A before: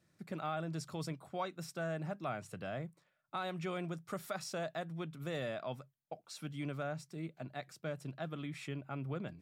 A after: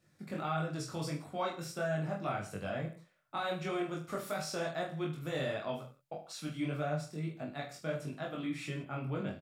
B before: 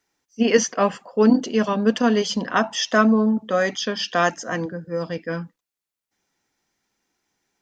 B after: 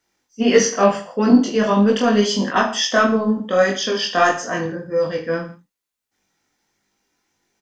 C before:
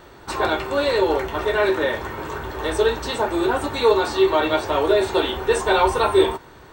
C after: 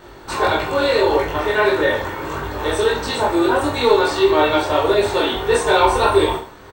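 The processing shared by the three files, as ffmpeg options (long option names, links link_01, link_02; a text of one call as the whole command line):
ffmpeg -i in.wav -af "acontrast=23,flanger=delay=19.5:depth=4.6:speed=1.6,aecho=1:1:20|45|76.25|115.3|164.1:0.631|0.398|0.251|0.158|0.1" out.wav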